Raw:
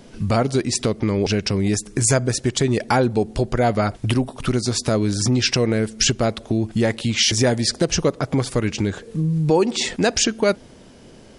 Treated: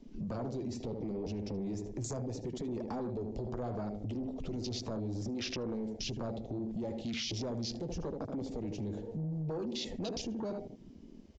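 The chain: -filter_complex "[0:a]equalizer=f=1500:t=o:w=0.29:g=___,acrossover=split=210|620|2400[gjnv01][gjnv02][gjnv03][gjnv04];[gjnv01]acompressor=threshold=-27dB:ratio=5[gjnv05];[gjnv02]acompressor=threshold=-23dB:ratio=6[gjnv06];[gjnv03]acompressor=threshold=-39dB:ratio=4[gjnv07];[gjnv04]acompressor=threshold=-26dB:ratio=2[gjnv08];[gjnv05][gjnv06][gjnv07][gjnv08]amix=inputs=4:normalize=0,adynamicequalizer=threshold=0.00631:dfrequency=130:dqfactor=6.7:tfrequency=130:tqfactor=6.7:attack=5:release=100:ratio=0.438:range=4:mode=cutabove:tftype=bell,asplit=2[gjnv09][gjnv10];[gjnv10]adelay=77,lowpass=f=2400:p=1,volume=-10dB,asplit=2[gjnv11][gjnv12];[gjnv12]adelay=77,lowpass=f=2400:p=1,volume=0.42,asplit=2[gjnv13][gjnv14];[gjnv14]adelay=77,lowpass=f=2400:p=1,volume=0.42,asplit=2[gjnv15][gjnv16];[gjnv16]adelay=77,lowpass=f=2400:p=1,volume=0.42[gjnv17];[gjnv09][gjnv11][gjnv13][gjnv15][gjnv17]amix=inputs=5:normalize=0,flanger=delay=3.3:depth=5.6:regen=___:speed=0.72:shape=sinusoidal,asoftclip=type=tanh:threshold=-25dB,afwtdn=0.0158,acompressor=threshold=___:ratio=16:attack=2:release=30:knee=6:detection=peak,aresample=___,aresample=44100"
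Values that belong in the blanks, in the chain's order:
-8, -51, -34dB, 16000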